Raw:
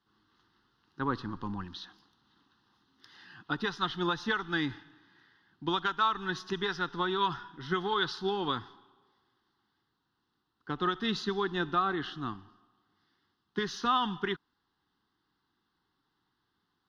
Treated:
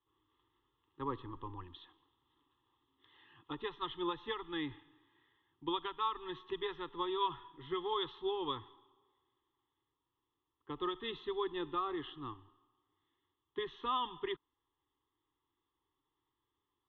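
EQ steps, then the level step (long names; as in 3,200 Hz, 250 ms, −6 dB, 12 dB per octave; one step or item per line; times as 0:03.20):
high-frequency loss of the air 350 metres
parametric band 3,400 Hz +11 dB 0.24 octaves
phaser with its sweep stopped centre 1,000 Hz, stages 8
−3.0 dB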